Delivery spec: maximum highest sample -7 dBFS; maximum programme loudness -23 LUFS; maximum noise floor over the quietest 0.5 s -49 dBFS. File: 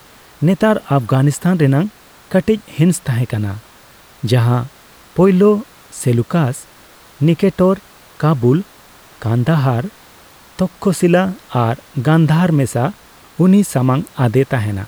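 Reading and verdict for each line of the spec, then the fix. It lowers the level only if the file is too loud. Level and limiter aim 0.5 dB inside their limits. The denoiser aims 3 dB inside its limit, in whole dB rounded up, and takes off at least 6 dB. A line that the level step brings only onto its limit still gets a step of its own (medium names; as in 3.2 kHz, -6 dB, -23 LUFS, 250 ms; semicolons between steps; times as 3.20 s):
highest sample -3.0 dBFS: fail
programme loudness -15.5 LUFS: fail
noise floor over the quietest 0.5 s -44 dBFS: fail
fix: trim -8 dB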